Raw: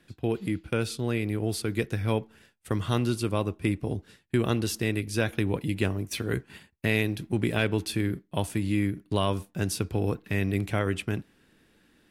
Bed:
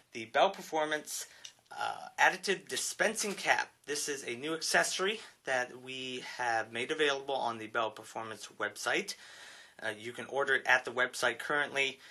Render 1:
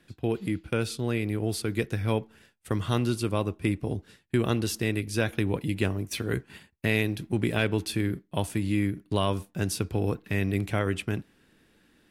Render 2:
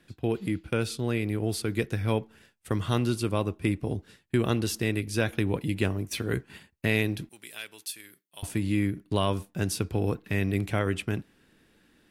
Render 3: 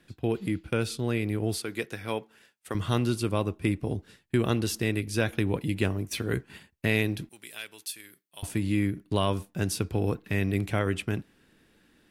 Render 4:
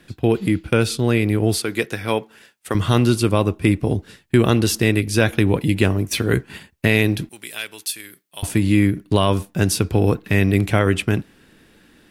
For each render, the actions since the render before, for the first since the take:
nothing audible
7.29–8.43 differentiator
1.58–2.75 HPF 490 Hz 6 dB/oct
gain +10.5 dB; limiter -3 dBFS, peak gain reduction 2.5 dB

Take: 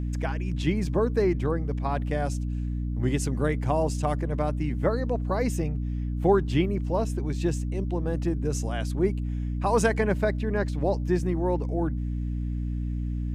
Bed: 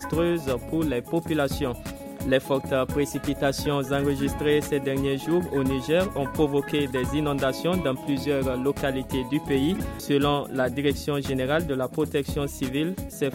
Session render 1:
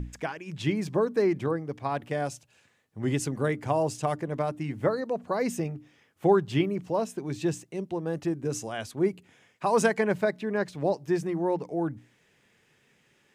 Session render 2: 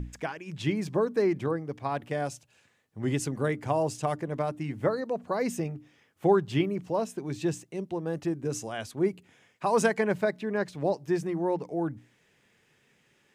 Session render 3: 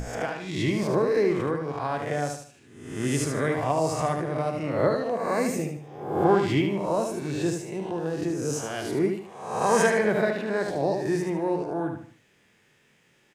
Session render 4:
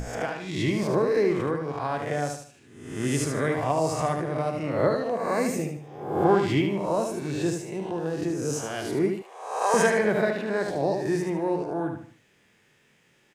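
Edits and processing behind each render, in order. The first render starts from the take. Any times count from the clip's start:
notches 60/120/180/240/300 Hz
gain -1 dB
spectral swells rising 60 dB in 0.80 s; feedback echo 75 ms, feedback 35%, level -6 dB
9.22–9.74 HPF 460 Hz 24 dB/oct

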